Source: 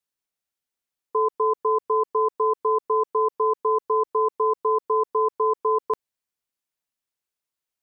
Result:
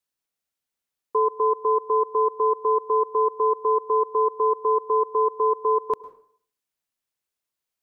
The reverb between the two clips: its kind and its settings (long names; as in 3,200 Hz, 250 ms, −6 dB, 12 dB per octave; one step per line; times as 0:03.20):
dense smooth reverb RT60 0.55 s, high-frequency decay 0.75×, pre-delay 95 ms, DRR 17.5 dB
level +1 dB